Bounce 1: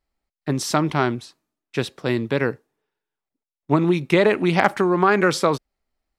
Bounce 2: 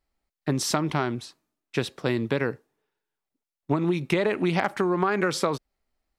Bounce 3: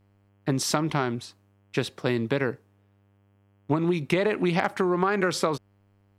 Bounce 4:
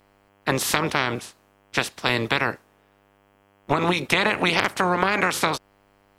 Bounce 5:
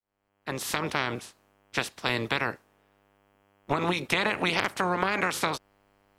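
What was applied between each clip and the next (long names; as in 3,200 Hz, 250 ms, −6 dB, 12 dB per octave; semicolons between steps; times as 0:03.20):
downward compressor, threshold −20 dBFS, peak gain reduction 10 dB
hum with harmonics 100 Hz, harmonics 33, −63 dBFS −7 dB per octave
ceiling on every frequency bin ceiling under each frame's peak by 21 dB; level +3 dB
fade in at the beginning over 0.95 s; level −5.5 dB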